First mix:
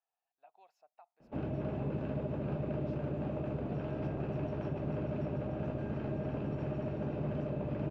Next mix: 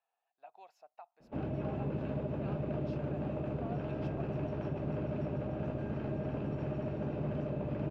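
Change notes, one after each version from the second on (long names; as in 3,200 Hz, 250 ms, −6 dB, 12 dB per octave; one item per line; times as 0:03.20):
speech +7.0 dB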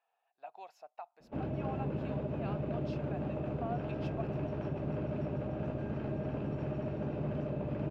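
speech +6.0 dB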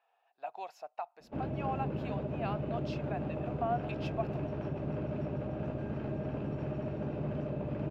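speech +7.0 dB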